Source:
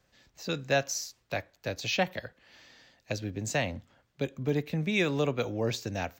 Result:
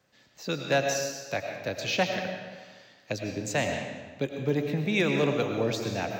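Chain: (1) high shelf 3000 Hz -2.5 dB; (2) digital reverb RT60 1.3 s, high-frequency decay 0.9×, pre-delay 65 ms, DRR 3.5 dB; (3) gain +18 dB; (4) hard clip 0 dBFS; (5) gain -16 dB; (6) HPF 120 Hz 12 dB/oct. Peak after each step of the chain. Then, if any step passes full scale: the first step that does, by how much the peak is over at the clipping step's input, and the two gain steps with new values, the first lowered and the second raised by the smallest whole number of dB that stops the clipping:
-13.5, -13.0, +5.0, 0.0, -16.0, -13.5 dBFS; step 3, 5.0 dB; step 3 +13 dB, step 5 -11 dB

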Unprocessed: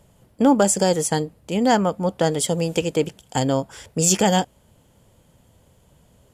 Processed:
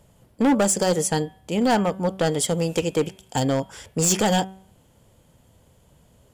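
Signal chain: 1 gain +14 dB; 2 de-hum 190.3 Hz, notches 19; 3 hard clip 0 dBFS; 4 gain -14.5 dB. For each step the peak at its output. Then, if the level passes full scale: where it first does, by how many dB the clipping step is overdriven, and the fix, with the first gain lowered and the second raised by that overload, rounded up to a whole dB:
+9.0, +9.0, 0.0, -14.5 dBFS; step 1, 9.0 dB; step 1 +5 dB, step 4 -5.5 dB

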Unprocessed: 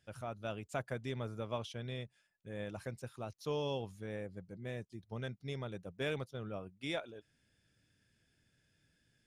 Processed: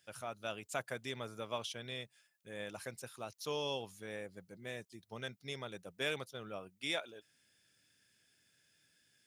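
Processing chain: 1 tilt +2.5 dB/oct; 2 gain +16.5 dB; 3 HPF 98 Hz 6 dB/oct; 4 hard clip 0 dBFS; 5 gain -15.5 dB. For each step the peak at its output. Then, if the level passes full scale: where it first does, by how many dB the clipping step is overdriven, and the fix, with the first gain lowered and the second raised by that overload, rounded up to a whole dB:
-23.0, -6.5, -6.0, -6.0, -21.5 dBFS; no overload

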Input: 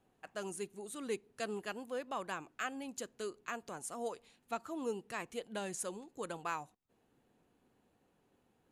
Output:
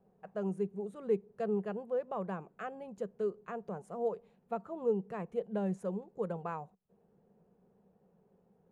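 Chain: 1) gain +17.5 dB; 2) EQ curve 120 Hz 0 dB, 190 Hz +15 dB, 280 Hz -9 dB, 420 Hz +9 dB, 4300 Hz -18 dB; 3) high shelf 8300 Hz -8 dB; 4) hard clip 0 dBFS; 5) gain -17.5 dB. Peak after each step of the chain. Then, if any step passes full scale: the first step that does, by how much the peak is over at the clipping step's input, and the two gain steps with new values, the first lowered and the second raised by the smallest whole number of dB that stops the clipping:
-6.5, -3.0, -3.0, -3.0, -20.5 dBFS; no overload

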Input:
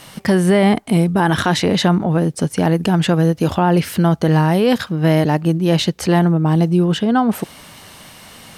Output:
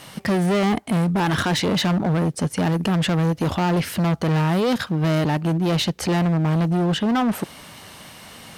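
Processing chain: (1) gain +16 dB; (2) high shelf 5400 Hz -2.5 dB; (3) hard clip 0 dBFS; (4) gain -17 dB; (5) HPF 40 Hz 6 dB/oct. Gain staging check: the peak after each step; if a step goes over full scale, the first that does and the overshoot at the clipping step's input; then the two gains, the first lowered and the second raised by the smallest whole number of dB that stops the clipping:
+10.0, +10.0, 0.0, -17.0, -14.0 dBFS; step 1, 10.0 dB; step 1 +6 dB, step 4 -7 dB

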